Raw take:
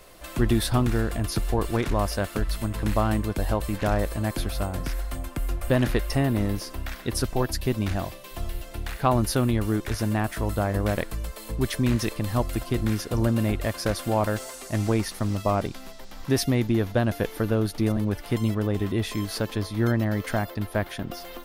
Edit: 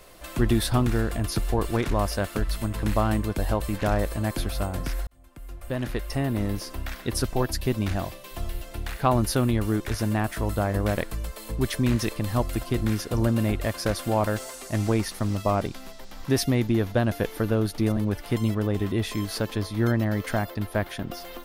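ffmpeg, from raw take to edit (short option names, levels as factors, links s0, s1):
-filter_complex "[0:a]asplit=2[s0][s1];[s0]atrim=end=5.07,asetpts=PTS-STARTPTS,afade=t=out:st=5.066:d=0.004:c=hsin[s2];[s1]atrim=start=5.07,asetpts=PTS-STARTPTS,afade=t=in:d=1.67[s3];[s2][s3]concat=n=2:v=0:a=1"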